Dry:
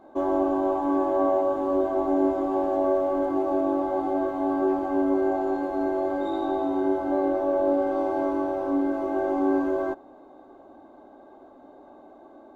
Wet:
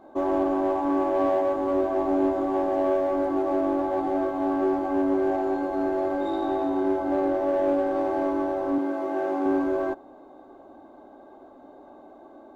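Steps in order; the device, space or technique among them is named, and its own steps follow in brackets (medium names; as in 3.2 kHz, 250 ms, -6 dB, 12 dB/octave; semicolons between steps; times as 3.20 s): parallel distortion (in parallel at -6 dB: hard clipper -25 dBFS, distortion -9 dB); 8.78–9.46 s: on the sum: high-pass 270 Hz 6 dB/octave; trim -2.5 dB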